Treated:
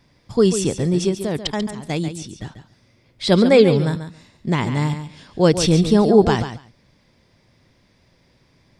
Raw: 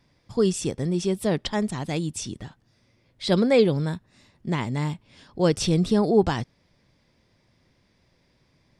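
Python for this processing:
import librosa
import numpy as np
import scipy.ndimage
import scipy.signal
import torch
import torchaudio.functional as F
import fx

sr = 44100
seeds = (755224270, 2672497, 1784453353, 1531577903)

y = fx.level_steps(x, sr, step_db=14, at=(1.09, 2.42))
y = fx.echo_feedback(y, sr, ms=140, feedback_pct=15, wet_db=-10.0)
y = F.gain(torch.from_numpy(y), 6.0).numpy()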